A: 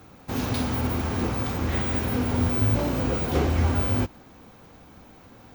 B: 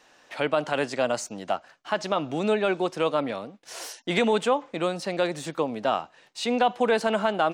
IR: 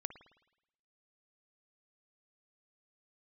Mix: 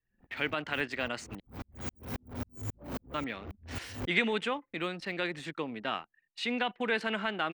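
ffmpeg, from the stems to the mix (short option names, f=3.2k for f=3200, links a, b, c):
-filter_complex "[0:a]acompressor=threshold=-25dB:ratio=5,volume=31dB,asoftclip=hard,volume=-31dB,aeval=exprs='val(0)*pow(10,-29*if(lt(mod(-3.7*n/s,1),2*abs(-3.7)/1000),1-mod(-3.7*n/s,1)/(2*abs(-3.7)/1000),(mod(-3.7*n/s,1)-2*abs(-3.7)/1000)/(1-2*abs(-3.7)/1000))/20)':c=same,volume=1dB[a];[1:a]firequalizer=gain_entry='entry(370,0);entry(580,-8);entry(1900,9);entry(6000,-6)':delay=0.05:min_phase=1,volume=-7dB,asplit=3[b][c][d];[b]atrim=end=1.4,asetpts=PTS-STARTPTS,afade=t=out:st=1.396:d=0.004:c=hsin[e];[c]atrim=start=1.4:end=3.14,asetpts=PTS-STARTPTS,volume=0[f];[d]atrim=start=3.14,asetpts=PTS-STARTPTS,afade=t=in:d=0.004:c=hsin[g];[e][f][g]concat=n=3:v=0:a=1,asplit=2[h][i];[i]apad=whole_len=244580[j];[a][j]sidechaincompress=threshold=-38dB:ratio=8:attack=16:release=930[k];[k][h]amix=inputs=2:normalize=0,anlmdn=0.0251"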